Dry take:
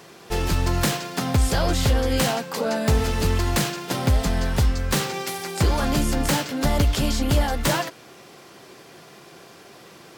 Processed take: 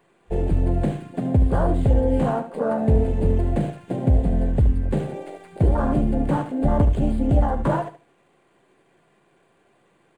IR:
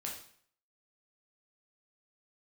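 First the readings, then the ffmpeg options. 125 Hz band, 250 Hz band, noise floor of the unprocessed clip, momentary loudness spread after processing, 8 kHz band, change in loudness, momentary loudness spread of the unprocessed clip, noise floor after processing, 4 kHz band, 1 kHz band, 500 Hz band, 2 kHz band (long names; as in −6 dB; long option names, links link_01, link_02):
+2.0 dB, +2.5 dB, −47 dBFS, 7 LU, below −20 dB, +1.0 dB, 5 LU, −62 dBFS, below −20 dB, −1.5 dB, +1.5 dB, −11.5 dB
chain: -filter_complex "[0:a]afwtdn=0.0794,bandreject=frequency=1300:width=11,aresample=11025,aresample=44100,aecho=1:1:73|146|219:0.282|0.062|0.0136,acrossover=split=3300[link_01][link_02];[link_02]aeval=exprs='abs(val(0))':channel_layout=same[link_03];[link_01][link_03]amix=inputs=2:normalize=0,volume=2dB"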